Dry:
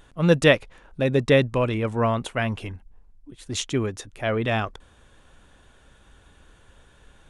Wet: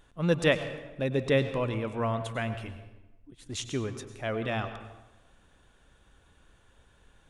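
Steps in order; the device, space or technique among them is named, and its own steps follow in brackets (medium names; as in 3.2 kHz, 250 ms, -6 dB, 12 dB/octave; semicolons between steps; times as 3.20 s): saturated reverb return (on a send at -9 dB: reverberation RT60 1.0 s, pre-delay 92 ms + saturation -12.5 dBFS, distortion -17 dB); on the sum: trim -7.5 dB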